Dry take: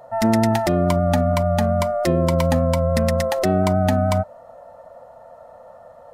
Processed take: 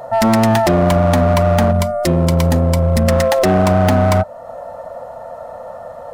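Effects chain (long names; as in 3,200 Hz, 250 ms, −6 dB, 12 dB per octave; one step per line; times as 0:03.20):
0:01.71–0:03.08: parametric band 970 Hz −8 dB 2.9 octaves
in parallel at −1 dB: downward compressor 5 to 1, threshold −35 dBFS, peak gain reduction 19 dB
on the sum: gain into a clipping stage and back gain 16 dB
level +7 dB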